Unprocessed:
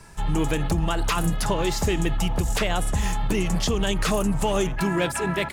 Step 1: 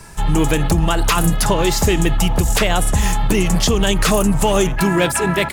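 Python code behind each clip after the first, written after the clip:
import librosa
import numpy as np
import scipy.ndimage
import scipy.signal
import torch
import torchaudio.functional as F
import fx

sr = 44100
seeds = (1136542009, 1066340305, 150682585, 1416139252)

y = fx.high_shelf(x, sr, hz=9500.0, db=7.0)
y = y * 10.0 ** (7.5 / 20.0)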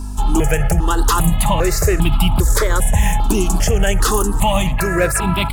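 y = fx.add_hum(x, sr, base_hz=50, snr_db=10)
y = y + 10.0 ** (-23.0 / 20.0) * np.pad(y, (int(1040 * sr / 1000.0), 0))[:len(y)]
y = fx.phaser_held(y, sr, hz=2.5, low_hz=520.0, high_hz=1800.0)
y = y * 10.0 ** (2.5 / 20.0)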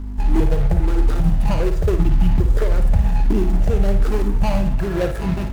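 y = scipy.signal.medfilt(x, 41)
y = fx.room_flutter(y, sr, wall_m=9.6, rt60_s=0.37)
y = y * 10.0 ** (-2.5 / 20.0)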